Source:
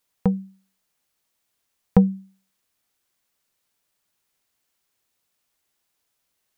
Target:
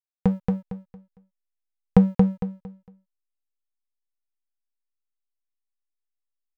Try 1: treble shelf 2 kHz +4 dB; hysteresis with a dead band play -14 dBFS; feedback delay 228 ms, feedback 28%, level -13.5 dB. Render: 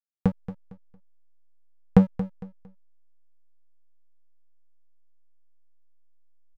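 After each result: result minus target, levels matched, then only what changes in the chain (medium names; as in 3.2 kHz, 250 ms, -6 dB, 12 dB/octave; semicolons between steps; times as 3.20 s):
echo-to-direct -10.5 dB; hysteresis with a dead band: distortion +10 dB
change: feedback delay 228 ms, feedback 28%, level -3 dB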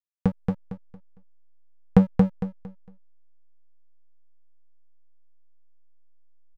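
hysteresis with a dead band: distortion +10 dB
change: hysteresis with a dead band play -25.5 dBFS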